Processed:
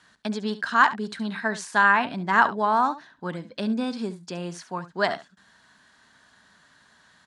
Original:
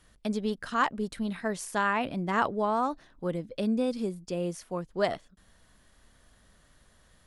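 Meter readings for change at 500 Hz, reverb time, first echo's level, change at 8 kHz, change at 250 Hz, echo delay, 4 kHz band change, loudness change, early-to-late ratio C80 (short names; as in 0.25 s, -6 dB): 0.0 dB, none, -14.5 dB, +1.5 dB, +1.5 dB, 70 ms, +6.5 dB, +6.0 dB, none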